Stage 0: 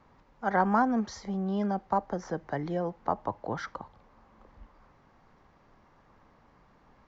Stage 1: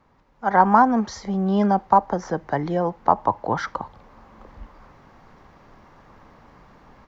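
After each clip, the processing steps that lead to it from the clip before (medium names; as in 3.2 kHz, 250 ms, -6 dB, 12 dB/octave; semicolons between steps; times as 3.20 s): dynamic bell 940 Hz, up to +7 dB, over -43 dBFS, Q 2.3; level rider gain up to 11 dB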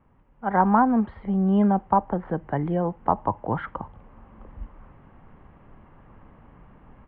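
elliptic low-pass 3 kHz, stop band 50 dB; bass shelf 320 Hz +11 dB; trim -6 dB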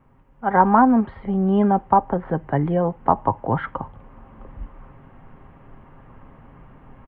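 comb 7.5 ms, depth 31%; trim +4 dB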